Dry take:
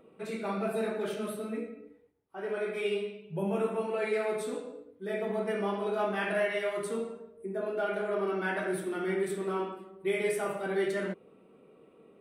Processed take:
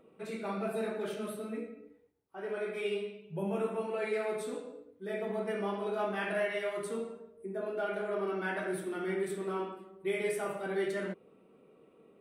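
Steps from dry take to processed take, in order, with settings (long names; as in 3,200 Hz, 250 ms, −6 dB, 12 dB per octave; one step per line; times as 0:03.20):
level −3 dB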